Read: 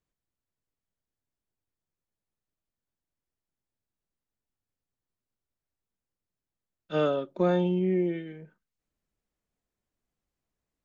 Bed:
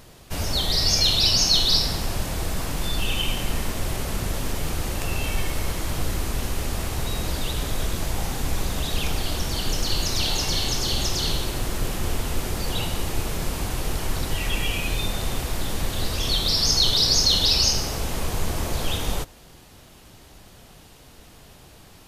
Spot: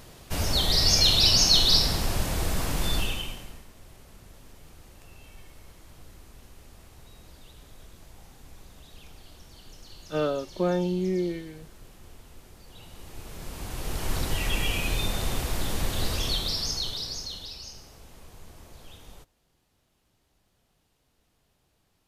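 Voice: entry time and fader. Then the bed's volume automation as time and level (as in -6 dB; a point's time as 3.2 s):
3.20 s, -1.0 dB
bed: 2.96 s -0.5 dB
3.67 s -23.5 dB
12.68 s -23.5 dB
14.14 s -2 dB
16.13 s -2 dB
17.6 s -22.5 dB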